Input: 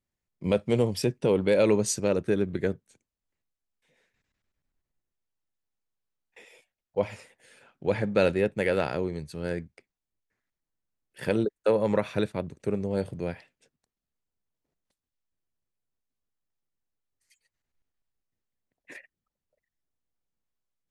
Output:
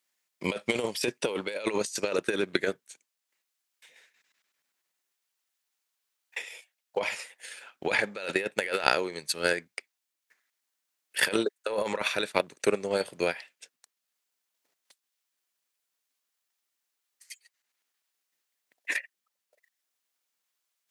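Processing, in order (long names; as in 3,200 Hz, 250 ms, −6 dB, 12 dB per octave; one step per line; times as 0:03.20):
high-pass filter 260 Hz 12 dB per octave
tilt shelving filter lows −9.5 dB, about 710 Hz
compressor whose output falls as the input rises −31 dBFS, ratio −1
transient designer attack +8 dB, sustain −3 dB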